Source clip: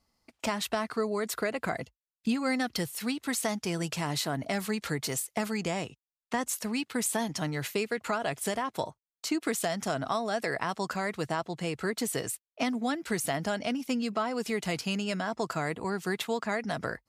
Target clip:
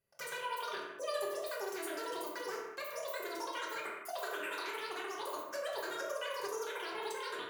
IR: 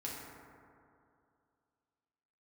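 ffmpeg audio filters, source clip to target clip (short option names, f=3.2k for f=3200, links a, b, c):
-filter_complex "[0:a]asetrate=100548,aresample=44100[a];[1:a]atrim=start_sample=2205,afade=t=out:st=0.39:d=0.01,atrim=end_sample=17640,asetrate=61740,aresample=44100[b];[a][b]afir=irnorm=-1:irlink=0,volume=-6.5dB"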